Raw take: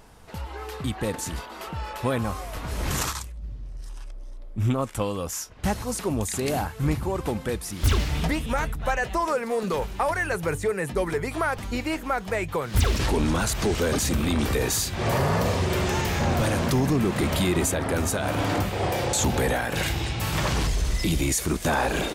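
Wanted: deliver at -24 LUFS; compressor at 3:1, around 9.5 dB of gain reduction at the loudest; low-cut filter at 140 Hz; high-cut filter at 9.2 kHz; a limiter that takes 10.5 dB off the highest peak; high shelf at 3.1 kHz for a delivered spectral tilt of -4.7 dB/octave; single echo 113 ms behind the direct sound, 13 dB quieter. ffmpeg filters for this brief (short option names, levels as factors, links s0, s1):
-af "highpass=140,lowpass=9200,highshelf=f=3100:g=-7.5,acompressor=threshold=0.02:ratio=3,alimiter=level_in=2.24:limit=0.0631:level=0:latency=1,volume=0.447,aecho=1:1:113:0.224,volume=5.96"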